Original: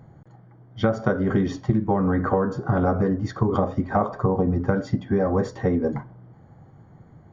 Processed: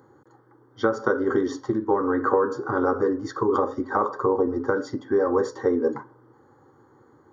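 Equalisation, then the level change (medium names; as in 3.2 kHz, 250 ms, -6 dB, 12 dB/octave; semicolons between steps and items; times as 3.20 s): high-pass 230 Hz 12 dB/octave; static phaser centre 670 Hz, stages 6; +4.5 dB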